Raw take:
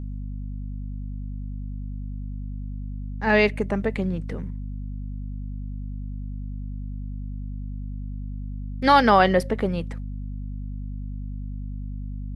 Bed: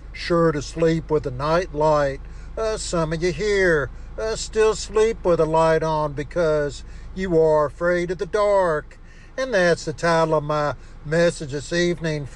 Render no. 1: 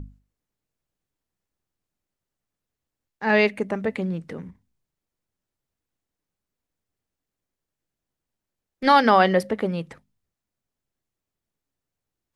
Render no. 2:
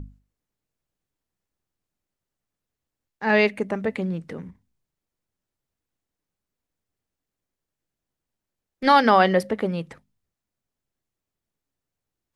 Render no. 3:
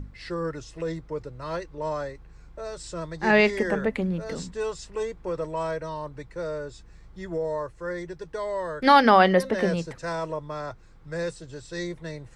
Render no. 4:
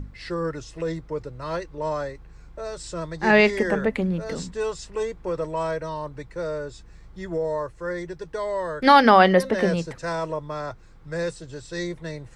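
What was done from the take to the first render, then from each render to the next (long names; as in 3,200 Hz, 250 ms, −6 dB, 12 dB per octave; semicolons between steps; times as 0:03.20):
mains-hum notches 50/100/150/200/250 Hz
no processing that can be heard
mix in bed −12 dB
level +2.5 dB; brickwall limiter −3 dBFS, peak gain reduction 1 dB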